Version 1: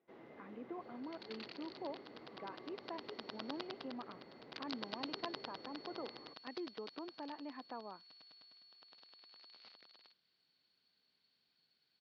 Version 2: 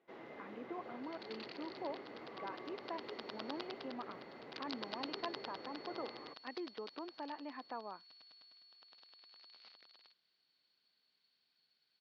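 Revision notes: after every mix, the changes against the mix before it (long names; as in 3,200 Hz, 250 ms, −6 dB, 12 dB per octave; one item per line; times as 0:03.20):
speech +4.5 dB
first sound +8.0 dB
master: add low-shelf EQ 410 Hz −7.5 dB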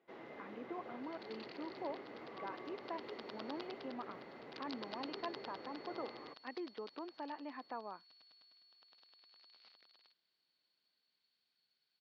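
second sound −4.0 dB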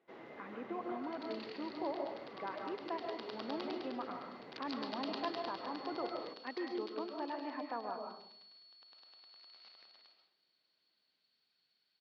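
reverb: on, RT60 0.65 s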